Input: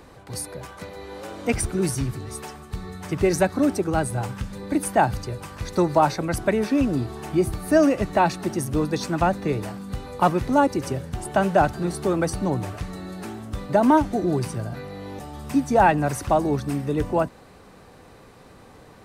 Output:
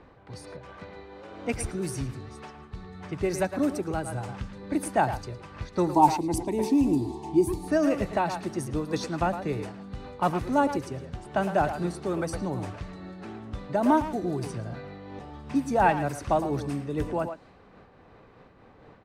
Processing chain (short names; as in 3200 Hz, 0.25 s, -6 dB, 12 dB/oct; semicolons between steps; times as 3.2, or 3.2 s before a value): low-pass opened by the level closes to 2600 Hz, open at -18.5 dBFS; 5.87–7.68 EQ curve 220 Hz 0 dB, 330 Hz +10 dB, 580 Hz -10 dB, 910 Hz +10 dB, 1400 Hz -24 dB, 2000 Hz -8 dB, 7400 Hz +5 dB; speakerphone echo 0.11 s, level -8 dB; noise-modulated level, depth 65%; gain -3 dB